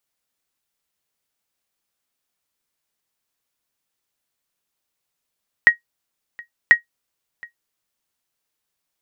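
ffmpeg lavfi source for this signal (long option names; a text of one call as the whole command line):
ffmpeg -f lavfi -i "aevalsrc='0.891*(sin(2*PI*1890*mod(t,1.04))*exp(-6.91*mod(t,1.04)/0.12)+0.0501*sin(2*PI*1890*max(mod(t,1.04)-0.72,0))*exp(-6.91*max(mod(t,1.04)-0.72,0)/0.12))':duration=2.08:sample_rate=44100" out.wav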